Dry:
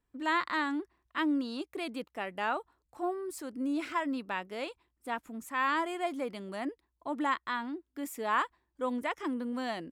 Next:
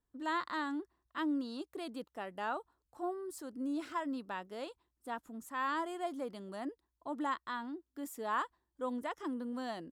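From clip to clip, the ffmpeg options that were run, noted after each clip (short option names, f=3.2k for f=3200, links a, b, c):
-af "equalizer=f=2.3k:w=2.7:g=-10,volume=-4.5dB"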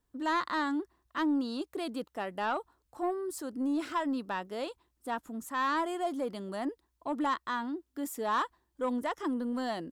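-af "asoftclip=type=tanh:threshold=-29.5dB,volume=7dB"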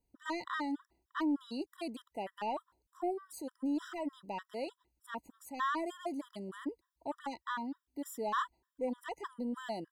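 -af "afftfilt=real='re*gt(sin(2*PI*3.3*pts/sr)*(1-2*mod(floor(b*sr/1024/990),2)),0)':imag='im*gt(sin(2*PI*3.3*pts/sr)*(1-2*mod(floor(b*sr/1024/990),2)),0)':win_size=1024:overlap=0.75,volume=-2.5dB"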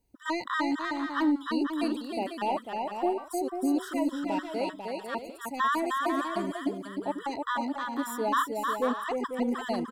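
-af "aecho=1:1:310|496|607.6|674.6|714.7:0.631|0.398|0.251|0.158|0.1,volume=7dB"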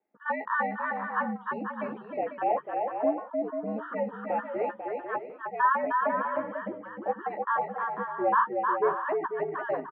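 -filter_complex "[0:a]asplit=2[a][b];[b]adelay=14,volume=-7dB[c];[a][c]amix=inputs=2:normalize=0,highpass=f=440:t=q:w=0.5412,highpass=f=440:t=q:w=1.307,lowpass=f=2.1k:t=q:w=0.5176,lowpass=f=2.1k:t=q:w=0.7071,lowpass=f=2.1k:t=q:w=1.932,afreqshift=-79,volume=2.5dB"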